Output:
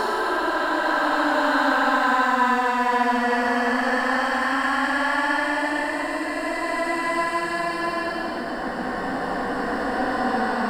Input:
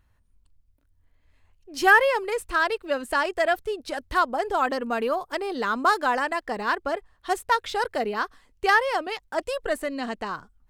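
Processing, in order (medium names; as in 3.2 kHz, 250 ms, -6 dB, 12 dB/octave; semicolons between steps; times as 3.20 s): reverse spectral sustain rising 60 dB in 1.01 s; resonant low shelf 370 Hz +6 dB, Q 1.5; Paulstretch 19×, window 0.10 s, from 5.96 s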